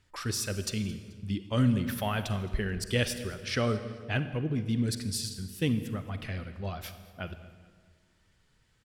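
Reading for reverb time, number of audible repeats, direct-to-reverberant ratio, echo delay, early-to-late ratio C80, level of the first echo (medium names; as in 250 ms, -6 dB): 1.6 s, 2, 10.0 dB, 217 ms, 12.0 dB, -20.5 dB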